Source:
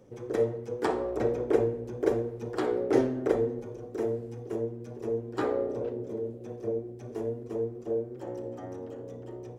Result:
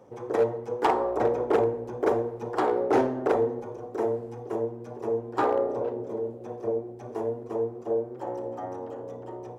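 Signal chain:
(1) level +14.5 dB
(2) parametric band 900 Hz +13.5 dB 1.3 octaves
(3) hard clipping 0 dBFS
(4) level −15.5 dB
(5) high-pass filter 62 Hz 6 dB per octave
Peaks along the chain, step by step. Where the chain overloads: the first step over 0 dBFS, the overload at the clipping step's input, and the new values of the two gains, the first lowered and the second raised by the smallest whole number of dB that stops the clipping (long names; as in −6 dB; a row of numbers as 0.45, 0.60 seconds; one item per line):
+5.0, +9.0, 0.0, −15.5, −14.0 dBFS
step 1, 9.0 dB
step 1 +5.5 dB, step 4 −6.5 dB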